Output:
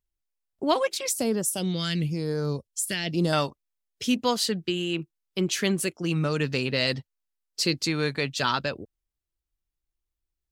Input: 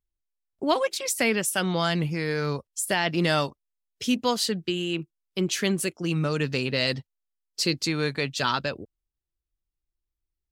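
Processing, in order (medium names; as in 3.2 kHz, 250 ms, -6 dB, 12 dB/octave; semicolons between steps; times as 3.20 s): 1.12–3.33 s: phase shifter stages 2, 1 Hz, lowest notch 780–2300 Hz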